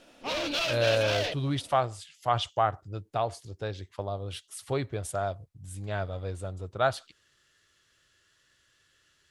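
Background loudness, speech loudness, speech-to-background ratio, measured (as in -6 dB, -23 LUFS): -30.0 LUFS, -31.5 LUFS, -1.5 dB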